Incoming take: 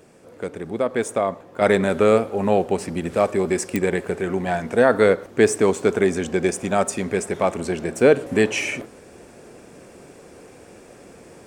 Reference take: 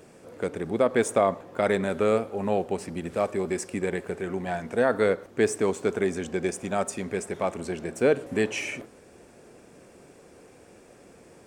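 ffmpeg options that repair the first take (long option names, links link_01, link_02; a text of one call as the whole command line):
ffmpeg -i in.wav -af "adeclick=threshold=4,asetnsamples=nb_out_samples=441:pad=0,asendcmd='1.61 volume volume -7dB',volume=0dB" out.wav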